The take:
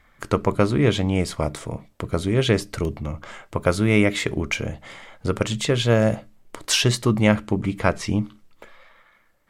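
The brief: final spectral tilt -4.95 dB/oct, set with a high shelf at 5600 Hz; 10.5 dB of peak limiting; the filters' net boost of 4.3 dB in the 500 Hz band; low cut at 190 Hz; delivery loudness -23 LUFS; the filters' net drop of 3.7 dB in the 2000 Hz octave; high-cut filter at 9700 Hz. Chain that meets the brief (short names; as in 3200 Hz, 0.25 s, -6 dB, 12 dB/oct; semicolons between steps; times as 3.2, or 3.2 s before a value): HPF 190 Hz; LPF 9700 Hz; bell 500 Hz +5.5 dB; bell 2000 Hz -4 dB; high shelf 5600 Hz -6 dB; gain +2 dB; limiter -9 dBFS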